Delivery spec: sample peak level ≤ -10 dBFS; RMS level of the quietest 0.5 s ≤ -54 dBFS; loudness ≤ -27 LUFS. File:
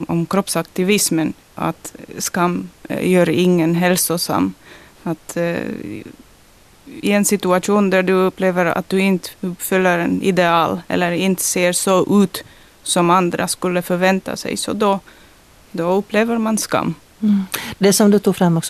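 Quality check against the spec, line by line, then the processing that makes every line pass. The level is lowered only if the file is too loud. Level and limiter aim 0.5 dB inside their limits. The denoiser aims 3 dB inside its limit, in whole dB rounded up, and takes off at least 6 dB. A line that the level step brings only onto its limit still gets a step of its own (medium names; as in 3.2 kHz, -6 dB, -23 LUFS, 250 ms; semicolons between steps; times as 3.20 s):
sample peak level -3.5 dBFS: fail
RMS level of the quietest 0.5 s -48 dBFS: fail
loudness -17.0 LUFS: fail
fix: trim -10.5 dB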